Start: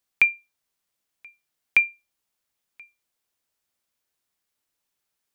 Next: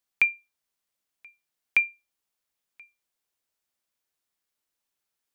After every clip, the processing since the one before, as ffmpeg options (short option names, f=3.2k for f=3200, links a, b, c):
-af "equalizer=f=91:w=0.65:g=-3,volume=-3.5dB"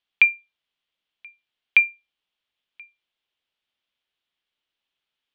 -af "lowpass=f=3.2k:t=q:w=3.6"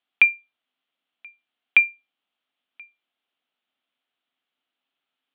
-af "highpass=160,equalizer=f=260:t=q:w=4:g=10,equalizer=f=720:t=q:w=4:g=7,equalizer=f=1.3k:t=q:w=4:g=5,lowpass=f=3.8k:w=0.5412,lowpass=f=3.8k:w=1.3066"